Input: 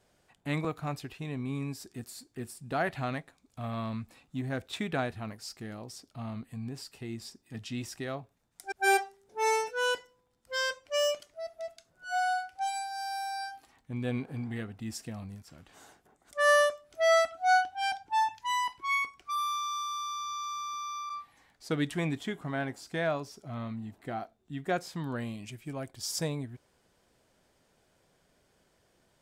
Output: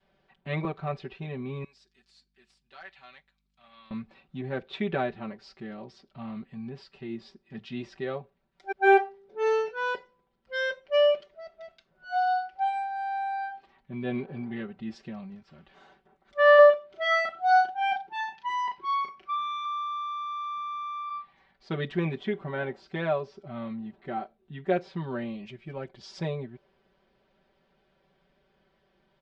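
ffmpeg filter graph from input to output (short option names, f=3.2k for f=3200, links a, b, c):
-filter_complex "[0:a]asettb=1/sr,asplit=3[a][b][c];[a]atrim=end=1.644[d];[b]atrim=start=1.64:end=3.91,asetpts=PTS-STARTPTS,afade=t=in:d=0.004:c=qsin,afade=t=out:st=2.266:d=0.004:c=qsin,aderivative,aeval=exprs='val(0)+0.000158*(sin(2*PI*50*n/s)+sin(2*PI*2*50*n/s)/2+sin(2*PI*3*50*n/s)/3+sin(2*PI*4*50*n/s)/4+sin(2*PI*5*50*n/s)/5)':c=same,aeval=exprs='0.015*(abs(mod(val(0)/0.015+3,4)-2)-1)':c=same[e];[c]atrim=start=3.906[f];[d][e]acrossfade=d=0.004:c1=hsin:c2=qsin[g];[g][f]acrossfade=d=0.004:c1=qsin:c2=hsin,asettb=1/sr,asplit=3[h][i][j];[h]atrim=end=16.554[k];[i]atrim=start=16.55:end=19.65,asetpts=PTS-STARTPTS,afade=t=in:d=0.004:c=qsin,afade=t=out:st=3.096:d=0.004:c=qsin,highpass=f=110:p=1,asplit=2[l][m];[m]adelay=36,volume=-3.5dB[n];[l][n]amix=inputs=2:normalize=0,atrim=end_sample=136710[o];[j]atrim=start=19.646[p];[k][o]acrossfade=d=0.004:c1=hsin:c2=qsin[q];[q][p]acrossfade=d=0.004:c1=qsin:c2=hsin,lowpass=f=3.9k:w=0.5412,lowpass=f=3.9k:w=1.3066,aecho=1:1:5.2:0.97,adynamicequalizer=threshold=0.00891:dfrequency=440:dqfactor=1.2:tfrequency=440:tqfactor=1.2:attack=5:release=100:ratio=0.375:range=3.5:mode=boostabove:tftype=bell,volume=-2.5dB"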